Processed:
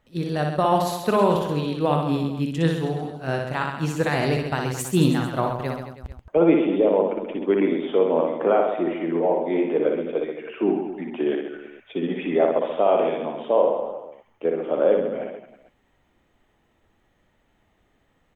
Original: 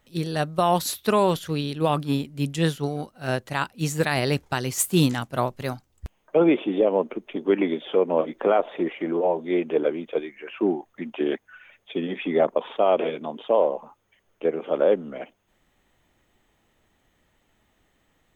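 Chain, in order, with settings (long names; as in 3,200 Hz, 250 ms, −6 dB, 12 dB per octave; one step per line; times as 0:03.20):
high-shelf EQ 3,700 Hz −10.5 dB
reverse bouncing-ball delay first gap 60 ms, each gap 1.2×, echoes 5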